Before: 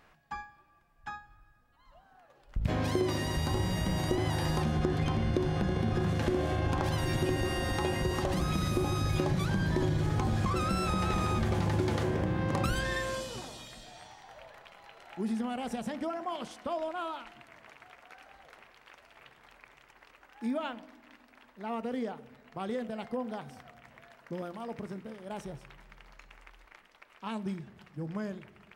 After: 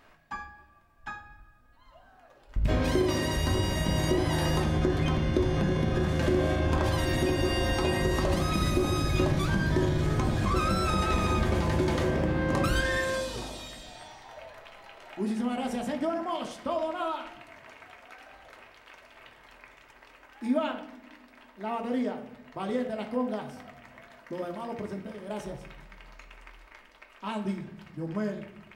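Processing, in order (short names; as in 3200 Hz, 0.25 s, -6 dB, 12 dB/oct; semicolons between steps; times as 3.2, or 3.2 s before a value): in parallel at -12 dB: hard clip -23.5 dBFS, distortion -19 dB; on the sum: reverb RT60 0.65 s, pre-delay 3 ms, DRR 1.5 dB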